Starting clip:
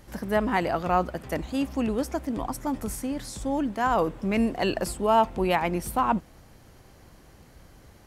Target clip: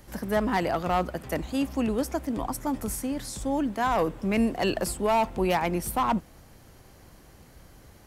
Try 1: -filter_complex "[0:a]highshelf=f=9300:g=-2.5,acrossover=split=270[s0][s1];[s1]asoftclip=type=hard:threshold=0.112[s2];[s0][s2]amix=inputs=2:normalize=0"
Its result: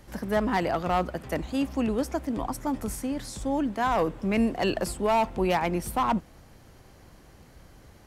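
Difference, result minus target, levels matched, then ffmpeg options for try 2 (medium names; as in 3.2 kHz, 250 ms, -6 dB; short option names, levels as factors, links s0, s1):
8 kHz band -3.5 dB
-filter_complex "[0:a]highshelf=f=9300:g=5.5,acrossover=split=270[s0][s1];[s1]asoftclip=type=hard:threshold=0.112[s2];[s0][s2]amix=inputs=2:normalize=0"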